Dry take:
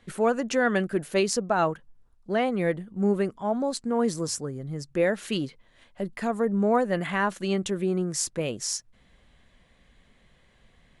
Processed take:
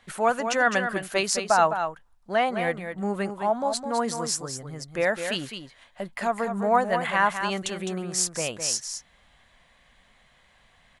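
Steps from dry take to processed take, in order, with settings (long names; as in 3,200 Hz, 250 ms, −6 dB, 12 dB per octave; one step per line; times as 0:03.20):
low shelf with overshoot 550 Hz −8 dB, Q 1.5
single-tap delay 209 ms −8 dB
level +3.5 dB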